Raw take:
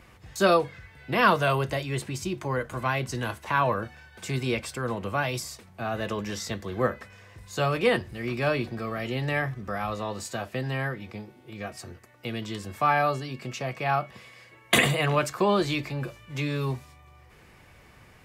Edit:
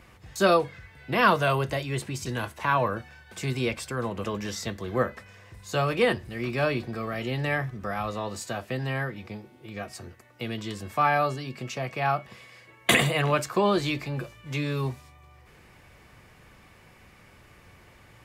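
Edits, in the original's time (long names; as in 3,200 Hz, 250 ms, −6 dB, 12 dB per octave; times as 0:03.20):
0:02.26–0:03.12: remove
0:05.10–0:06.08: remove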